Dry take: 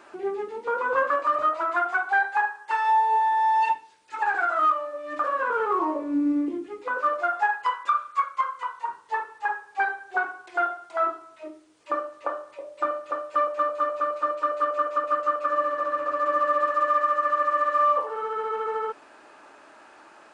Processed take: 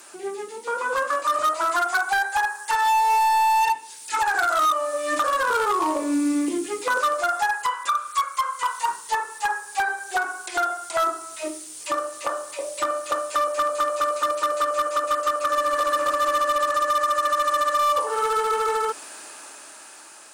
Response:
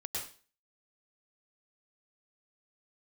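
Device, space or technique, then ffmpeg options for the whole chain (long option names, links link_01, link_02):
FM broadcast chain: -filter_complex "[0:a]highpass=47,dynaudnorm=framelen=420:gausssize=9:maxgain=13.5dB,acrossover=split=840|1900|4100[link_01][link_02][link_03][link_04];[link_01]acompressor=threshold=-19dB:ratio=4[link_05];[link_02]acompressor=threshold=-17dB:ratio=4[link_06];[link_03]acompressor=threshold=-40dB:ratio=4[link_07];[link_04]acompressor=threshold=-55dB:ratio=4[link_08];[link_05][link_06][link_07][link_08]amix=inputs=4:normalize=0,aemphasis=mode=production:type=75fm,alimiter=limit=-11.5dB:level=0:latency=1:release=434,asoftclip=type=hard:threshold=-15.5dB,lowpass=frequency=15000:width=0.5412,lowpass=frequency=15000:width=1.3066,aemphasis=mode=production:type=75fm,volume=-1dB"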